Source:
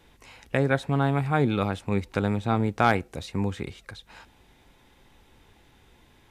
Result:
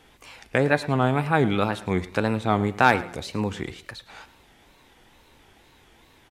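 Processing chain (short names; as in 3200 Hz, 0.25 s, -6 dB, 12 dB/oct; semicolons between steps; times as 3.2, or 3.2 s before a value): low shelf 220 Hz -7 dB; de-hum 188.3 Hz, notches 32; wow and flutter 140 cents; feedback echo 0.109 s, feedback 31%, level -18 dB; gain +4.5 dB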